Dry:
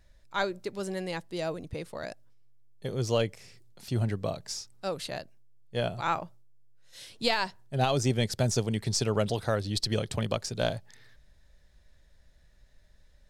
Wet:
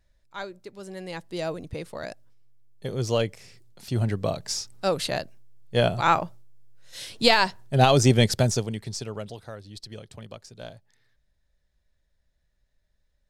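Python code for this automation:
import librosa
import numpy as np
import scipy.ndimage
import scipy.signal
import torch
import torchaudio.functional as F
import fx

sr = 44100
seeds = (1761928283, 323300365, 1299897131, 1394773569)

y = fx.gain(x, sr, db=fx.line((0.81, -6.5), (1.34, 2.5), (3.88, 2.5), (4.75, 8.5), (8.29, 8.5), (8.8, -3.5), (9.55, -12.0)))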